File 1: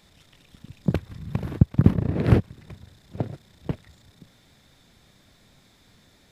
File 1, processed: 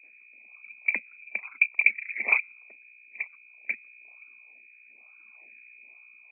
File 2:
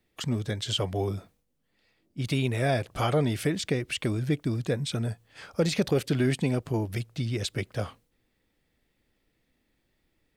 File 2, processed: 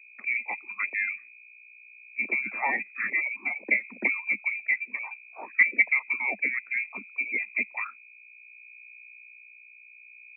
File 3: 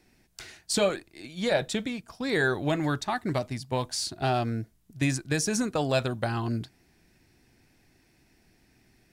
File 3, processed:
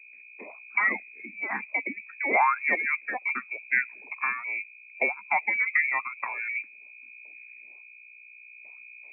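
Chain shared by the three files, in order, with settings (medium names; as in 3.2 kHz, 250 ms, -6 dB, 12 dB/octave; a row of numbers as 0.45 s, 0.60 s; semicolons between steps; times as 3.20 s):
phase shifter stages 12, 1.1 Hz, lowest notch 590–1700 Hz; gate with hold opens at -53 dBFS; hum notches 60/120/180/240/300/360/420/480/540 Hz; reverb removal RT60 1.3 s; bass shelf 270 Hz -7 dB; harmonic-percussive split harmonic -6 dB; hum 60 Hz, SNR 21 dB; rotary cabinet horn 0.7 Hz; frequency inversion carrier 2.5 kHz; steep high-pass 200 Hz 96 dB/octave; normalise loudness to -27 LUFS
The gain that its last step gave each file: +3.5 dB, +10.0 dB, +12.5 dB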